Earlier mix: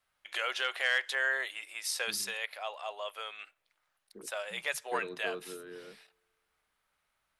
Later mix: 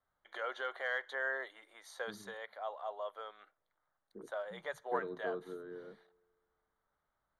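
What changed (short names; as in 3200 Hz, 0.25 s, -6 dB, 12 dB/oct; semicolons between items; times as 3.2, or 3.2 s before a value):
second voice: send +6.0 dB; master: add running mean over 17 samples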